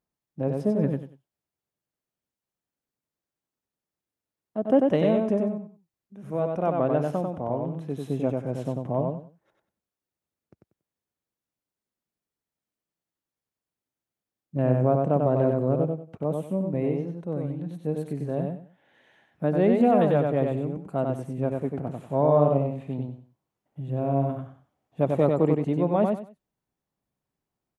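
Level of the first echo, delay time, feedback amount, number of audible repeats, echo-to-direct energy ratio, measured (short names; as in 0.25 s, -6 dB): -3.5 dB, 94 ms, 24%, 3, -3.5 dB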